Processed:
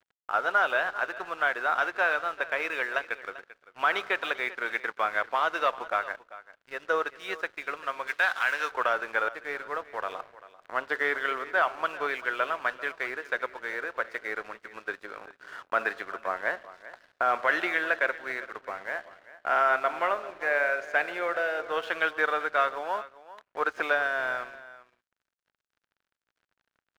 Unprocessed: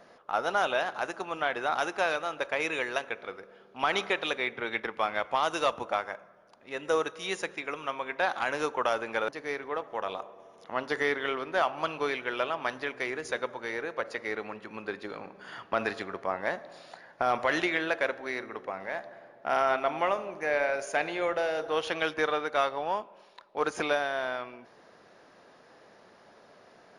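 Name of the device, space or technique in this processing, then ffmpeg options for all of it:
pocket radio on a weak battery: -filter_complex "[0:a]highpass=390,lowpass=3300,aeval=exprs='sgn(val(0))*max(abs(val(0))-0.00335,0)':c=same,equalizer=f=1500:t=o:w=0.56:g=8,bandreject=f=830:w=14,asettb=1/sr,asplit=3[s0][s1][s2];[s0]atrim=end=8.074[s3];[s1]atrim=start=8.07:end=8.71,asetpts=PTS-STARTPTS,afade=t=in:d=0.004:c=qsin,afade=t=out:st=0.636:d=0.004:c=qsin,tiltshelf=f=1400:g=-8.5[s4];[s2]atrim=start=8.706[s5];[s3][s4]acrossfade=d=0.004:c1=hsin:c2=qsin[s6];[s6][s5]acrossfade=d=0.004:c1=qsin:c2=hsin,aecho=1:1:392:0.141"

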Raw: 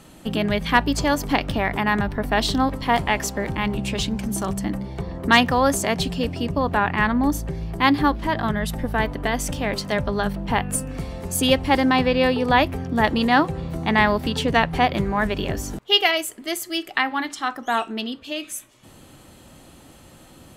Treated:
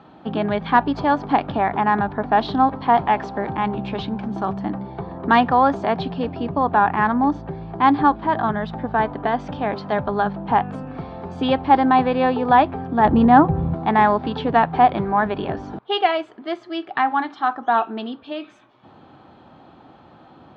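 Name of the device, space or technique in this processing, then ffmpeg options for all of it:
overdrive pedal into a guitar cabinet: -filter_complex "[0:a]asettb=1/sr,asplit=3[s0][s1][s2];[s0]atrim=end=13.054[s3];[s1]atrim=start=13.05:end=13.74,asetpts=PTS-STARTPTS,afade=t=in:d=0.004:c=qsin,afade=t=out:st=0.686:d=0.004:c=qsin,aemphasis=mode=reproduction:type=riaa[s4];[s2]atrim=start=13.736[s5];[s3][s4]acrossfade=d=0.004:c1=hsin:c2=qsin[s6];[s6][s5]acrossfade=d=0.004:c1=qsin:c2=hsin,asplit=2[s7][s8];[s8]highpass=f=720:p=1,volume=2.24,asoftclip=type=tanh:threshold=0.668[s9];[s7][s9]amix=inputs=2:normalize=0,lowpass=f=1400:p=1,volume=0.501,highpass=95,equalizer=f=540:t=q:w=4:g=-5,equalizer=f=790:t=q:w=4:g=5,equalizer=f=2000:t=q:w=4:g=-9,equalizer=f=2800:t=q:w=4:g=-8,lowpass=f=3600:w=0.5412,lowpass=f=3600:w=1.3066,volume=1.5"

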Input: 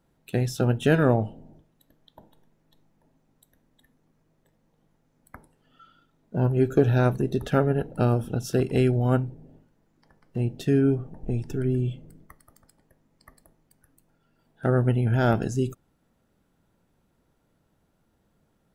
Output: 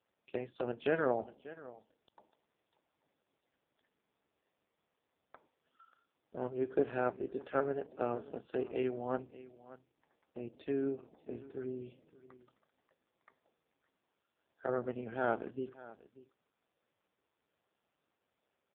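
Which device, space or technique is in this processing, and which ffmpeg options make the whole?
satellite phone: -af "highpass=390,lowpass=3100,aecho=1:1:586:0.126,volume=0.447" -ar 8000 -c:a libopencore_amrnb -b:a 4750

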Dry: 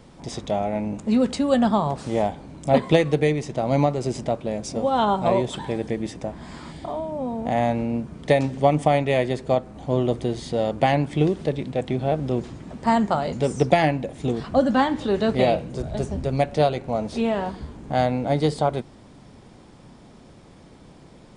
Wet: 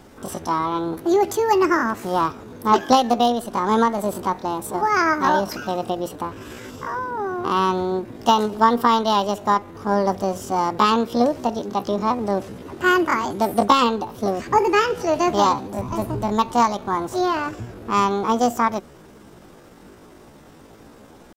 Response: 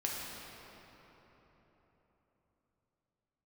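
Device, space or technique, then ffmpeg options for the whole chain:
chipmunk voice: -af "asetrate=70004,aresample=44100,atempo=0.629961,volume=1.26"

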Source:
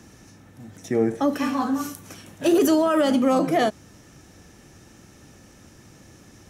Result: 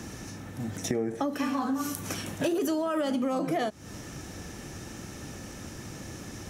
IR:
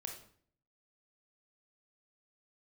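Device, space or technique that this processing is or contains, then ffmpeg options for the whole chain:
serial compression, leveller first: -af "acompressor=threshold=0.0316:ratio=1.5,acompressor=threshold=0.0178:ratio=5,volume=2.51"

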